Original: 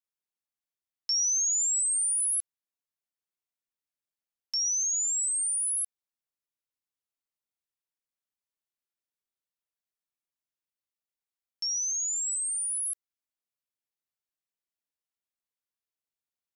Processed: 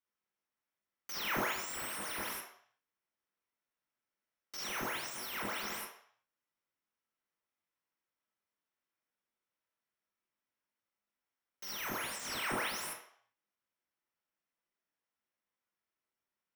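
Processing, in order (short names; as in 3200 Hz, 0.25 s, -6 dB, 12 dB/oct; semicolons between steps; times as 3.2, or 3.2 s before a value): wrapped overs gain 33 dB; reverb RT60 0.60 s, pre-delay 18 ms, DRR -3 dB; gain -6.5 dB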